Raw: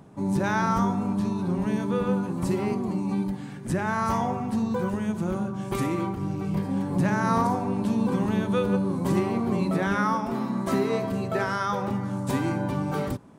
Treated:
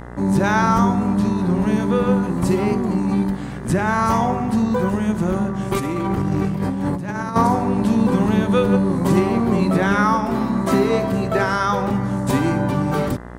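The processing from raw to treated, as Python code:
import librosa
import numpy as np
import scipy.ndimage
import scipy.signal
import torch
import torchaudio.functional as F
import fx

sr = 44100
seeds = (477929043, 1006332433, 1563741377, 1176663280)

y = fx.dmg_buzz(x, sr, base_hz=60.0, harmonics=34, level_db=-43.0, tilt_db=-4, odd_only=False)
y = fx.over_compress(y, sr, threshold_db=-30.0, ratio=-1.0, at=(5.76, 7.36))
y = y * 10.0 ** (7.5 / 20.0)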